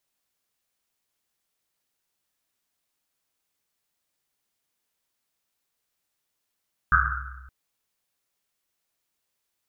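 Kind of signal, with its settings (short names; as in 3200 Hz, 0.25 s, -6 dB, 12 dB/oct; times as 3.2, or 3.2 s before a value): Risset drum length 0.57 s, pitch 65 Hz, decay 1.68 s, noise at 1400 Hz, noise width 380 Hz, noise 65%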